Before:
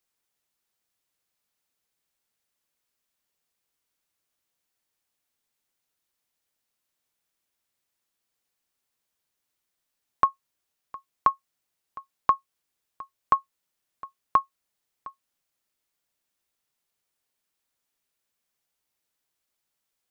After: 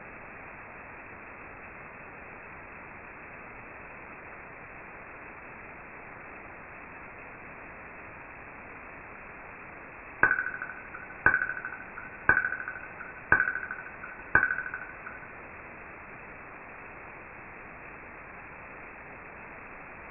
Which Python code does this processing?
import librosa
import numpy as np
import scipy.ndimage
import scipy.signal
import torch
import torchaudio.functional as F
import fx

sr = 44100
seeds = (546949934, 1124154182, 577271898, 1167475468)

p1 = fx.env_lowpass(x, sr, base_hz=370.0, full_db=-29.5)
p2 = fx.level_steps(p1, sr, step_db=9)
p3 = p1 + F.gain(torch.from_numpy(p2), -3.0).numpy()
p4 = fx.small_body(p3, sr, hz=(210.0, 320.0, 670.0, 970.0), ring_ms=85, db=10)
p5 = p4 + fx.echo_thinned(p4, sr, ms=77, feedback_pct=67, hz=400.0, wet_db=-4, dry=0)
p6 = fx.env_flanger(p5, sr, rest_ms=7.2, full_db=-22.0)
p7 = fx.rev_gated(p6, sr, seeds[0], gate_ms=80, shape='falling', drr_db=1.0)
p8 = fx.quant_dither(p7, sr, seeds[1], bits=6, dither='triangular')
y = fx.freq_invert(p8, sr, carrier_hz=2600)